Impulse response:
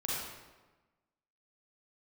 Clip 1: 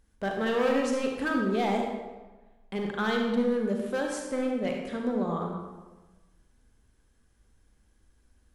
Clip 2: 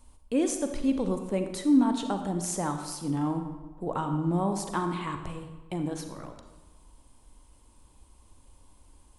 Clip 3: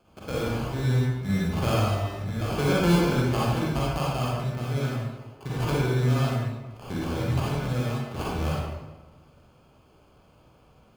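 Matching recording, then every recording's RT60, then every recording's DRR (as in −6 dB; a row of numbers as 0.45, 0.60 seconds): 3; 1.2, 1.2, 1.2 seconds; 1.0, 6.0, −6.5 decibels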